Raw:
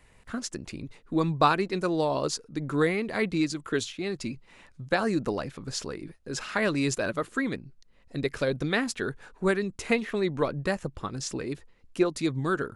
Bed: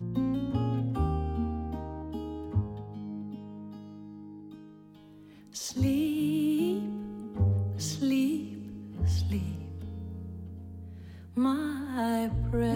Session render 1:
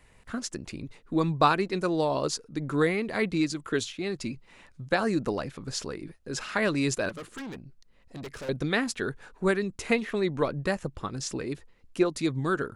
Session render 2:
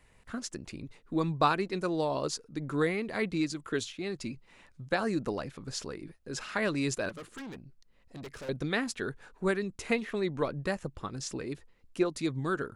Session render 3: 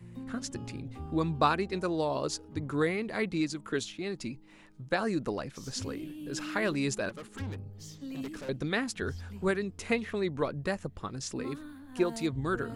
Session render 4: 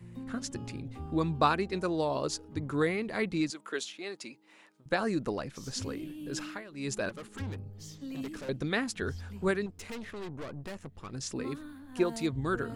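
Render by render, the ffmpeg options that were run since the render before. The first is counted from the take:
ffmpeg -i in.wav -filter_complex "[0:a]asettb=1/sr,asplit=3[link_01][link_02][link_03];[link_01]atrim=end=7.094[link_04];[link_02]atrim=start=7.09:end=8.49,asetpts=PTS-STARTPTS,afade=type=in:duration=0.004:curve=qsin,afade=type=out:start_time=1.396:duration=0.004:curve=qsin,aeval=exprs='(tanh(63.1*val(0)+0.2)-tanh(0.2))/63.1':channel_layout=same[link_05];[link_03]atrim=start=8.486[link_06];[link_04][link_05]acrossfade=duration=0.004:curve1=hsin:curve2=qsin[link_07];[link_07][link_06]acrossfade=duration=0.004:curve1=qsin:curve2=hsin" out.wav
ffmpeg -i in.wav -af "volume=-4dB" out.wav
ffmpeg -i in.wav -i bed.wav -filter_complex "[1:a]volume=-13.5dB[link_01];[0:a][link_01]amix=inputs=2:normalize=0" out.wav
ffmpeg -i in.wav -filter_complex "[0:a]asettb=1/sr,asplit=3[link_01][link_02][link_03];[link_01]atrim=end=3.504[link_04];[link_02]atrim=start=3.5:end=4.86,asetpts=PTS-STARTPTS,afade=type=in:duration=0.004:curve=qsin,afade=type=out:start_time=1.356:duration=0.004:curve=qsin,highpass=440[link_05];[link_03]atrim=start=4.856[link_06];[link_04][link_05]acrossfade=duration=0.004:curve1=hsin:curve2=qsin[link_07];[link_07][link_06]acrossfade=duration=0.004:curve1=qsin:curve2=hsin,asettb=1/sr,asplit=3[link_08][link_09][link_10];[link_08]atrim=end=9.664[link_11];[link_09]atrim=start=9.66:end=11.13,asetpts=PTS-STARTPTS,afade=type=in:duration=0.004:curve=qsin,afade=type=out:start_time=1.466:duration=0.004:curve=qsin,aeval=exprs='(tanh(79.4*val(0)+0.6)-tanh(0.6))/79.4':channel_layout=same[link_12];[link_10]atrim=start=11.126[link_13];[link_11][link_12]acrossfade=duration=0.004:curve1=hsin:curve2=qsin[link_14];[link_14][link_13]acrossfade=duration=0.004:curve1=qsin:curve2=hsin,asplit=3[link_15][link_16][link_17];[link_15]atrim=end=6.64,asetpts=PTS-STARTPTS,afade=type=out:start_time=6.38:duration=0.26:silence=0.105925[link_18];[link_16]atrim=start=6.64:end=6.72,asetpts=PTS-STARTPTS,volume=-19.5dB[link_19];[link_17]atrim=start=6.72,asetpts=PTS-STARTPTS,afade=type=in:duration=0.26:silence=0.105925[link_20];[link_18][link_19][link_20]concat=n=3:v=0:a=1" out.wav

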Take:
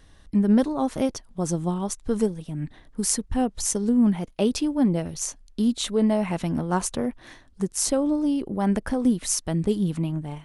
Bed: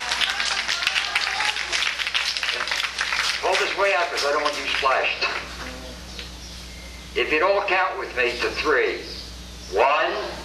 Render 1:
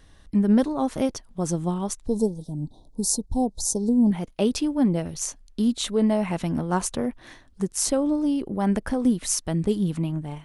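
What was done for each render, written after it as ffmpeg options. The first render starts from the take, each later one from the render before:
ffmpeg -i in.wav -filter_complex "[0:a]asettb=1/sr,asplit=3[link_01][link_02][link_03];[link_01]atrim=end=2.064[link_04];[link_02]atrim=start=2.06:end=4.11,asetpts=PTS-STARTPTS,afade=type=in:duration=0.004:curve=qsin,afade=type=out:start_time=2.046:duration=0.004:curve=qsin,asuperstop=centerf=1900:order=12:qfactor=0.68[link_05];[link_03]atrim=start=4.106[link_06];[link_04][link_05]acrossfade=duration=0.004:curve1=hsin:curve2=qsin[link_07];[link_07][link_06]acrossfade=duration=0.004:curve1=qsin:curve2=hsin" out.wav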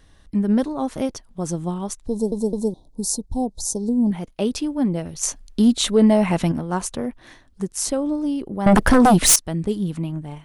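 ffmpeg -i in.wav -filter_complex "[0:a]asettb=1/sr,asplit=3[link_01][link_02][link_03];[link_01]atrim=end=5.234[link_04];[link_02]atrim=start=5.23:end=6.52,asetpts=PTS-STARTPTS,afade=type=in:duration=0.004:curve=qsin,afade=type=out:start_time=1.286:duration=0.004:curve=qsin,acontrast=85[link_05];[link_03]atrim=start=6.516[link_06];[link_04][link_05]acrossfade=duration=0.004:curve1=hsin:curve2=qsin[link_07];[link_07][link_06]acrossfade=duration=0.004:curve1=qsin:curve2=hsin,asettb=1/sr,asplit=3[link_08][link_09][link_10];[link_08]atrim=end=8.664[link_11];[link_09]atrim=start=8.66:end=9.36,asetpts=PTS-STARTPTS,afade=type=in:duration=0.004:curve=qsin,afade=type=out:start_time=0.696:duration=0.004:curve=qsin,aeval=exprs='0.376*sin(PI/2*4.47*val(0)/0.376)':channel_layout=same[link_12];[link_10]atrim=start=9.356[link_13];[link_11][link_12]acrossfade=duration=0.004:curve1=hsin:curve2=qsin[link_14];[link_14][link_13]acrossfade=duration=0.004:curve1=qsin:curve2=hsin,asplit=4[link_15][link_16][link_17][link_18];[link_15]atrim=end=2.322[link_19];[link_16]atrim=start=2.108:end=2.322[link_20];[link_17]atrim=start=2.108:end=2.322[link_21];[link_18]atrim=start=2.738[link_22];[link_19][link_20]acrossfade=duration=0.004:curve1=hsin:curve2=hsin[link_23];[link_23][link_21]acrossfade=duration=0.004:curve1=hsin:curve2=hsin[link_24];[link_24][link_22]acrossfade=duration=0.004:curve1=hsin:curve2=hsin" out.wav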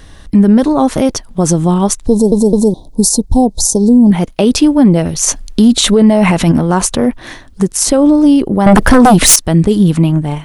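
ffmpeg -i in.wav -af "alimiter=level_in=16.5dB:limit=-1dB:release=50:level=0:latency=1" out.wav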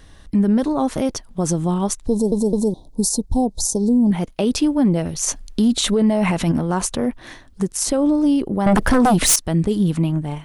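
ffmpeg -i in.wav -af "volume=-9dB" out.wav

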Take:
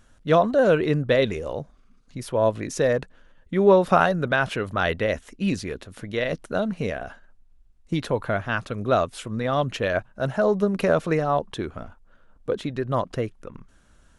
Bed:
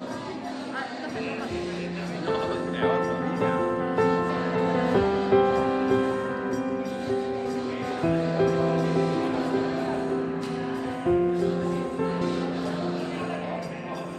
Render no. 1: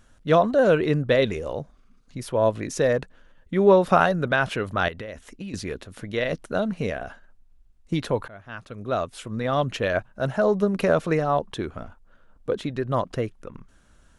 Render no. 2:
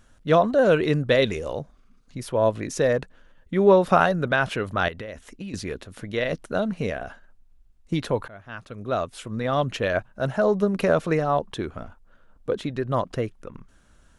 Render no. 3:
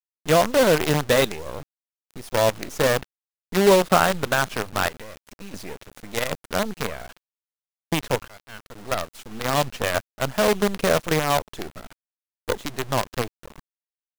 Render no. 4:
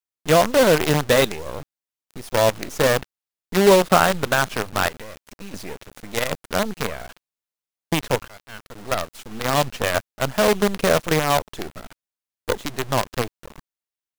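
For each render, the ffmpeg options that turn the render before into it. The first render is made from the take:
ffmpeg -i in.wav -filter_complex "[0:a]asettb=1/sr,asplit=3[link_01][link_02][link_03];[link_01]atrim=end=4.884[link_04];[link_02]atrim=start=4.88:end=5.54,asetpts=PTS-STARTPTS,afade=type=in:duration=0.004:curve=qsin,afade=type=out:start_time=0.656:duration=0.004:curve=qsin,acompressor=threshold=-31dB:ratio=16:attack=3.2:release=140:knee=1:detection=peak[link_05];[link_03]atrim=start=5.536[link_06];[link_04][link_05]acrossfade=duration=0.004:curve1=hsin:curve2=qsin[link_07];[link_07][link_06]acrossfade=duration=0.004:curve1=qsin:curve2=hsin,asplit=2[link_08][link_09];[link_08]atrim=end=8.28,asetpts=PTS-STARTPTS,afade=type=out:start_time=8.276:duration=0.004:curve=hsin:silence=0.0668344[link_10];[link_09]atrim=start=8.28,asetpts=PTS-STARTPTS,afade=type=in:duration=1.26:silence=0.0668344[link_11];[link_10][link_11]concat=n=2:v=0:a=1" out.wav
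ffmpeg -i in.wav -filter_complex "[0:a]asettb=1/sr,asplit=3[link_01][link_02][link_03];[link_01]atrim=end=0.714[link_04];[link_02]atrim=start=0.71:end=1.59,asetpts=PTS-STARTPTS,afade=type=in:duration=0.004:curve=qsin,afade=type=out:start_time=0.876:duration=0.004:curve=qsin,equalizer=frequency=7400:width=0.35:gain=4.5[link_05];[link_03]atrim=start=1.586[link_06];[link_04][link_05]acrossfade=duration=0.004:curve1=hsin:curve2=qsin[link_07];[link_07][link_06]acrossfade=duration=0.004:curve1=qsin:curve2=hsin" out.wav
ffmpeg -i in.wav -af "acrusher=bits=4:dc=4:mix=0:aa=0.000001" out.wav
ffmpeg -i in.wav -af "volume=2dB" out.wav

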